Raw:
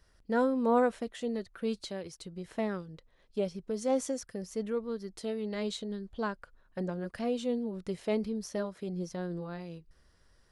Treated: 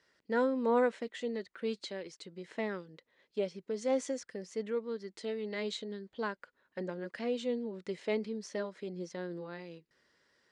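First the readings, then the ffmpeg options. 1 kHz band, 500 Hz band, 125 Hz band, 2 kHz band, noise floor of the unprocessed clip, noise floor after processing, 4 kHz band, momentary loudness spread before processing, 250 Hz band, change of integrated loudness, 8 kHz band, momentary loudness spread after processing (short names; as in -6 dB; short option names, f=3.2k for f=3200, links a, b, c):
-3.5 dB, -1.5 dB, -7.5 dB, +1.0 dB, -66 dBFS, -81 dBFS, -0.5 dB, 12 LU, -4.5 dB, -2.5 dB, -4.5 dB, 13 LU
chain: -af "highpass=270,equalizer=f=710:t=q:w=4:g=-6,equalizer=f=1.2k:t=q:w=4:g=-4,equalizer=f=2k:t=q:w=4:g=5,equalizer=f=5.7k:t=q:w=4:g=-4,lowpass=f=7.3k:w=0.5412,lowpass=f=7.3k:w=1.3066"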